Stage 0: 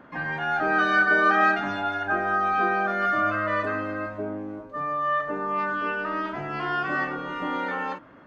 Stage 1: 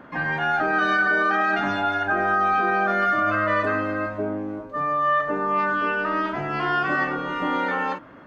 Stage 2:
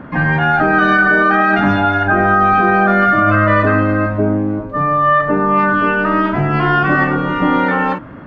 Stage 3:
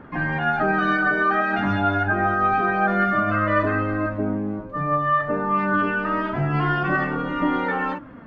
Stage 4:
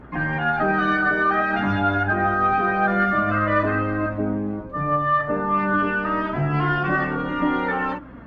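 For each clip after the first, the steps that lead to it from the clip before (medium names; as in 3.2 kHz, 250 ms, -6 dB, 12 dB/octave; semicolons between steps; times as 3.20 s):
peak limiter -17.5 dBFS, peak gain reduction 8 dB; trim +4.5 dB
tone controls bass +11 dB, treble -10 dB; trim +8.5 dB
flange 0.26 Hz, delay 2.2 ms, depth 8 ms, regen +45%; trim -4.5 dB
Chebyshev shaper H 5 -38 dB, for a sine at -8 dBFS; hum 60 Hz, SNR 26 dB; Opus 32 kbps 48 kHz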